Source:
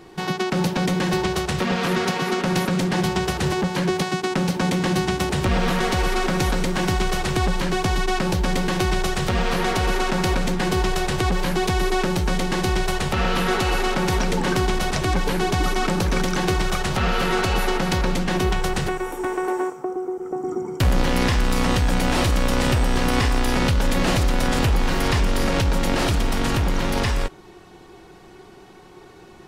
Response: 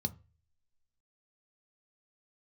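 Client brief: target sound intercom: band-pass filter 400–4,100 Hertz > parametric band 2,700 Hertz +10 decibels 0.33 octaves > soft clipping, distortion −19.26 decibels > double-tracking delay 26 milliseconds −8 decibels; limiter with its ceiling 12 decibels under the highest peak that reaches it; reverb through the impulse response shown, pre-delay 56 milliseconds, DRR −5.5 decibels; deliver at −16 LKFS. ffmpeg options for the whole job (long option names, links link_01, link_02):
-filter_complex "[0:a]alimiter=limit=-21dB:level=0:latency=1,asplit=2[link_01][link_02];[1:a]atrim=start_sample=2205,adelay=56[link_03];[link_02][link_03]afir=irnorm=-1:irlink=0,volume=5dB[link_04];[link_01][link_04]amix=inputs=2:normalize=0,highpass=400,lowpass=4100,equalizer=frequency=2700:width_type=o:width=0.33:gain=10,asoftclip=threshold=-15dB,asplit=2[link_05][link_06];[link_06]adelay=26,volume=-8dB[link_07];[link_05][link_07]amix=inputs=2:normalize=0,volume=7.5dB"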